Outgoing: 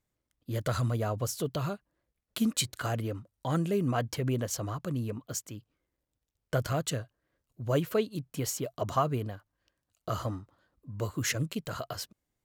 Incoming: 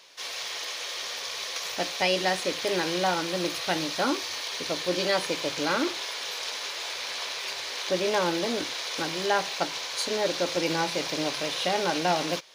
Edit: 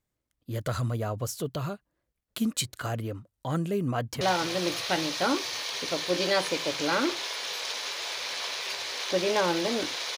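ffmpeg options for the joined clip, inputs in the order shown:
-filter_complex "[0:a]apad=whole_dur=10.17,atrim=end=10.17,atrim=end=4.212[s0];[1:a]atrim=start=2.988:end=8.95[s1];[s0][s1]acrossfade=d=0.004:c1=hsin:c2=hsin,asplit=2[s2][s3];[s3]afade=t=in:st=3.89:d=0.01,afade=t=out:st=4.21:d=0.01,aecho=0:1:260|520|780|1040|1300|1560|1820|2080:0.211349|0.137377|0.0892949|0.0580417|0.0377271|0.0245226|0.0159397|0.0103608[s4];[s2][s4]amix=inputs=2:normalize=0"

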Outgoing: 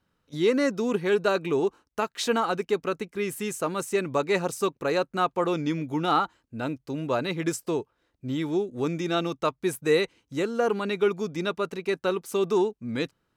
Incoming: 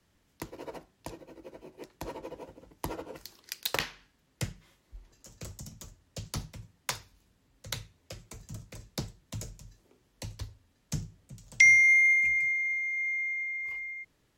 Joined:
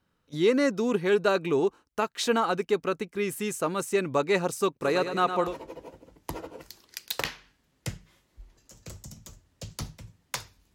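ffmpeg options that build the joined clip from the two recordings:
-filter_complex "[0:a]asplit=3[s0][s1][s2];[s0]afade=t=out:st=4.81:d=0.02[s3];[s1]aecho=1:1:108|216|324|432|540|648|756:0.376|0.207|0.114|0.0625|0.0344|0.0189|0.0104,afade=t=in:st=4.81:d=0.02,afade=t=out:st=5.56:d=0.02[s4];[s2]afade=t=in:st=5.56:d=0.02[s5];[s3][s4][s5]amix=inputs=3:normalize=0,apad=whole_dur=10.74,atrim=end=10.74,atrim=end=5.56,asetpts=PTS-STARTPTS[s6];[1:a]atrim=start=1.95:end=7.29,asetpts=PTS-STARTPTS[s7];[s6][s7]acrossfade=d=0.16:c1=tri:c2=tri"

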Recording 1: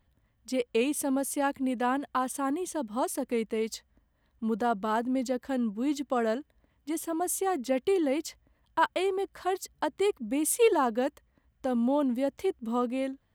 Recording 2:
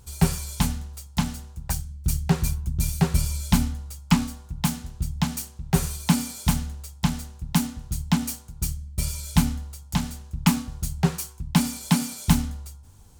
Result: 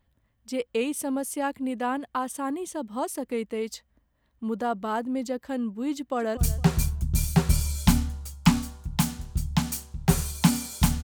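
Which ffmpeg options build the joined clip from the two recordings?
-filter_complex "[0:a]apad=whole_dur=11.03,atrim=end=11.03,atrim=end=6.372[s0];[1:a]atrim=start=2.018:end=6.68[s1];[s0][s1]acrossfade=d=0.004:c1=hsin:c2=hsin,asplit=2[s2][s3];[s3]afade=t=in:st=5.95:d=0.01,afade=t=out:st=6.37:d=0.01,aecho=0:1:230|460|690:0.141254|0.0423761|0.0127128[s4];[s2][s4]amix=inputs=2:normalize=0"

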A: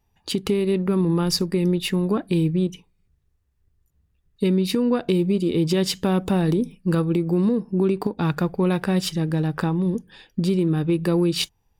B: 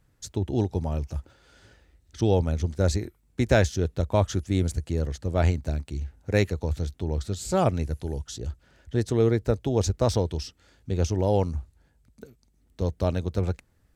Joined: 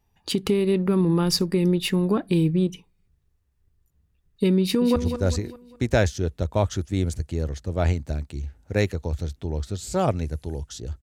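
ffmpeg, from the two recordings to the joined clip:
-filter_complex "[0:a]apad=whole_dur=11.02,atrim=end=11.02,atrim=end=4.962[s0];[1:a]atrim=start=2.538:end=8.6[s1];[s0][s1]acrossfade=d=0.004:c1=hsin:c2=hsin,asplit=2[s2][s3];[s3]afade=t=in:st=4.61:d=0.01,afade=t=out:st=4.96:d=0.01,aecho=0:1:200|400|600|800|1000:0.375837|0.169127|0.0761071|0.0342482|0.0154117[s4];[s2][s4]amix=inputs=2:normalize=0"

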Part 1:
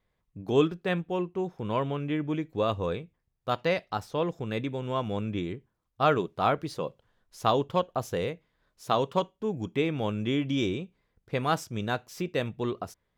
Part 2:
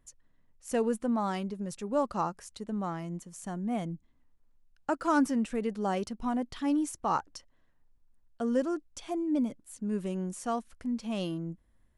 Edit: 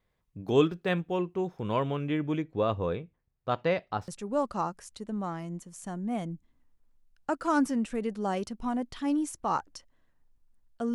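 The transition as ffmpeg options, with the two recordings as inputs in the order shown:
-filter_complex "[0:a]asettb=1/sr,asplit=3[s0][s1][s2];[s0]atrim=end=2.424[s3];[s1]atrim=start=2.42:end=4.08,asetpts=PTS-STARTPTS,afade=t=in:d=0.004:c=qsin,afade=t=out:st=1.656:d=0.004:c=qsin,aemphasis=mode=reproduction:type=75kf[s4];[s2]atrim=start=4.076[s5];[s3][s4]acrossfade=d=0.004:c1=hsin:c2=qsin[s6];[s6][s5]acrossfade=d=0.004:c1=qsin:c2=hsin,apad=whole_dur=10.94,atrim=end=10.94,atrim=end=4.082[s7];[1:a]atrim=start=1.678:end=8.54[s8];[s7][s8]acrossfade=d=0.004:c1=hsin:c2=hsin"

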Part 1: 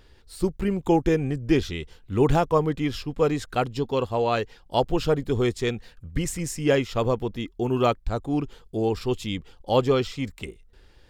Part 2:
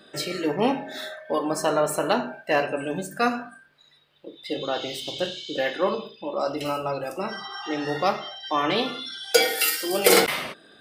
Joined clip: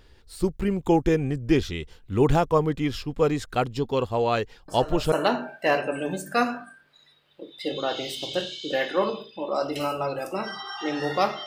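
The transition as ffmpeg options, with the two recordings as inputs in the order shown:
-filter_complex "[1:a]asplit=2[s0][s1];[0:a]apad=whole_dur=11.46,atrim=end=11.46,atrim=end=5.122[s2];[s1]atrim=start=1.968:end=8.31[s3];[s0]atrim=start=1.53:end=1.97,asetpts=PTS-STARTPTS,volume=0.2,afade=t=in:d=0.004:c=hsin,afade=t=out:st=0.436:d=0.004:c=hsin,adelay=4680[s4];[s2][s3]acrossfade=d=0.004:c1=hsin:c2=hsin[s5];[s5][s4]amix=inputs=2:normalize=0"

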